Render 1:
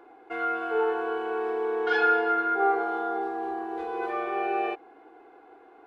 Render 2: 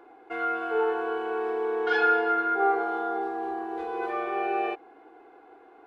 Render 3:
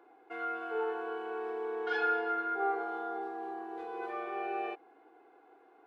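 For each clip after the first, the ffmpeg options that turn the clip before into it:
-af anull
-af "highpass=f=150:p=1,volume=0.398"

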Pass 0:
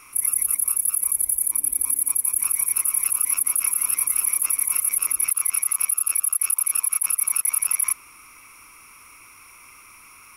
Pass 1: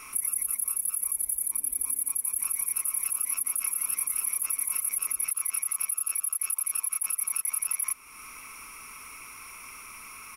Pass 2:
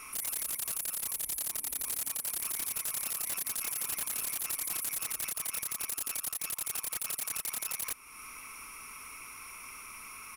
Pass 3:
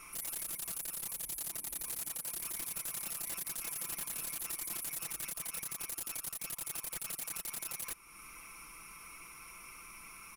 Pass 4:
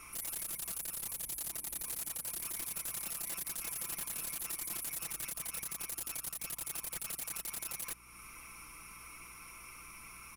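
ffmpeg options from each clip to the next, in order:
-filter_complex "[0:a]aecho=1:1:4.6:0.33,asplit=2[s0][s1];[s1]asoftclip=type=tanh:threshold=0.158,volume=0.355[s2];[s0][s2]amix=inputs=2:normalize=0,acompressor=threshold=0.0224:ratio=2"
-af "aeval=exprs='(mod(17.8*val(0)+1,2)-1)/17.8':c=same,volume=0.794"
-af "lowshelf=f=420:g=6.5,aecho=1:1:5.9:0.59,volume=0.473"
-af "aeval=exprs='val(0)+0.000631*(sin(2*PI*60*n/s)+sin(2*PI*2*60*n/s)/2+sin(2*PI*3*60*n/s)/3+sin(2*PI*4*60*n/s)/4+sin(2*PI*5*60*n/s)/5)':c=same"

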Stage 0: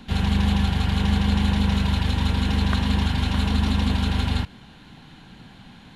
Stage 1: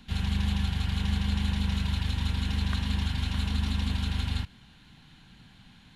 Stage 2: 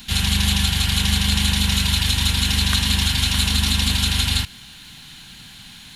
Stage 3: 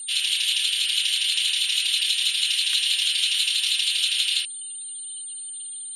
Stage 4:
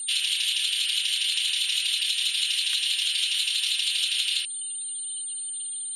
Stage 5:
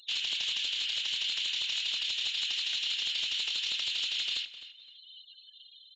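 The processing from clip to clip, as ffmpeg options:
-af "equalizer=f=500:t=o:w=2.6:g=-9.5,volume=0.562"
-af "crystalizer=i=7:c=0,volume=2.11"
-af "aeval=exprs='val(0)+0.0501*sin(2*PI*9000*n/s)':c=same,afftfilt=real='re*gte(hypot(re,im),0.0224)':imag='im*gte(hypot(re,im),0.0224)':win_size=1024:overlap=0.75,highpass=f=2900:t=q:w=3,volume=0.447"
-af "acompressor=threshold=0.0631:ratio=6,volume=1.26"
-filter_complex "[0:a]aeval=exprs='0.119*(abs(mod(val(0)/0.119+3,4)-2)-1)':c=same,asplit=2[s0][s1];[s1]adelay=258,lowpass=f=3800:p=1,volume=0.224,asplit=2[s2][s3];[s3]adelay=258,lowpass=f=3800:p=1,volume=0.24,asplit=2[s4][s5];[s5]adelay=258,lowpass=f=3800:p=1,volume=0.24[s6];[s0][s2][s4][s6]amix=inputs=4:normalize=0,aresample=16000,aresample=44100,volume=0.501"

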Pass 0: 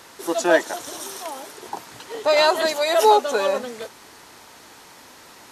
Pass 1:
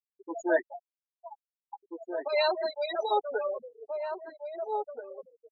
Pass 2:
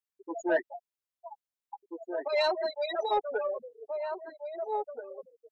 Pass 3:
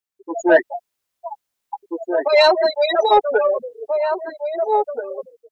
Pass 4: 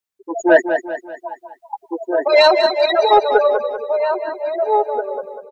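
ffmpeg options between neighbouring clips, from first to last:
-filter_complex "[0:a]afftfilt=real='re*gte(hypot(re,im),0.224)':imag='im*gte(hypot(re,im),0.224)':win_size=1024:overlap=0.75,asplit=2[s0][s1];[s1]adelay=1633,volume=0.447,highshelf=f=4000:g=-36.7[s2];[s0][s2]amix=inputs=2:normalize=0,asplit=2[s3][s4];[s4]adelay=6.2,afreqshift=2[s5];[s3][s5]amix=inputs=2:normalize=1,volume=0.447"
-af "asoftclip=type=tanh:threshold=0.15"
-af "dynaudnorm=f=130:g=5:m=3.76,volume=1.41"
-af "aecho=1:1:194|388|582|776|970:0.376|0.169|0.0761|0.0342|0.0154,volume=1.19"

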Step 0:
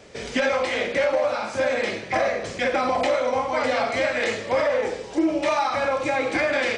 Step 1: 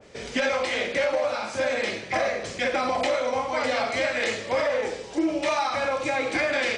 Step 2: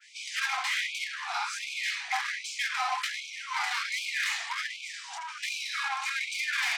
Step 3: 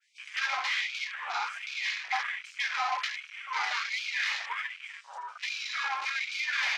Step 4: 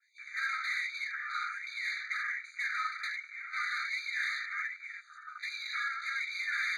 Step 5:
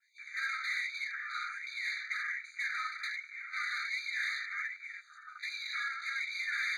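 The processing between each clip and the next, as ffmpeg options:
-af "adynamicequalizer=threshold=0.0178:dfrequency=2100:dqfactor=0.7:tfrequency=2100:tqfactor=0.7:attack=5:release=100:ratio=0.375:range=2:mode=boostabove:tftype=highshelf,volume=0.708"
-af "asoftclip=type=tanh:threshold=0.0447,afftfilt=real='re*gte(b*sr/1024,680*pow(2200/680,0.5+0.5*sin(2*PI*1.3*pts/sr)))':imag='im*gte(b*sr/1024,680*pow(2200/680,0.5+0.5*sin(2*PI*1.3*pts/sr)))':win_size=1024:overlap=0.75,volume=1.5"
-af "afwtdn=0.0126"
-filter_complex "[0:a]asplit=2[s0][s1];[s1]highpass=f=720:p=1,volume=4.47,asoftclip=type=tanh:threshold=0.112[s2];[s0][s2]amix=inputs=2:normalize=0,lowpass=f=2800:p=1,volume=0.501,flanger=delay=2:depth=9.1:regen=-74:speed=1:shape=triangular,afftfilt=real='re*eq(mod(floor(b*sr/1024/1200),2),1)':imag='im*eq(mod(floor(b*sr/1024/1200),2),1)':win_size=1024:overlap=0.75"
-af "highpass=1400"

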